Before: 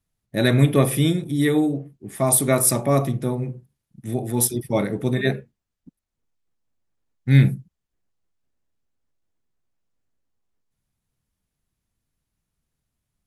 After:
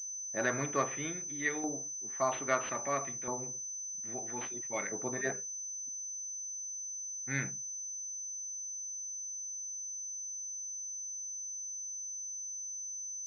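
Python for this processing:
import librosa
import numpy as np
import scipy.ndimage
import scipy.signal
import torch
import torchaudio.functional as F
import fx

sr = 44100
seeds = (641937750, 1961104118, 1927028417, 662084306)

y = fx.filter_lfo_bandpass(x, sr, shape='saw_up', hz=0.61, low_hz=940.0, high_hz=2100.0, q=1.6)
y = fx.pwm(y, sr, carrier_hz=6100.0)
y = F.gain(torch.from_numpy(y), -2.0).numpy()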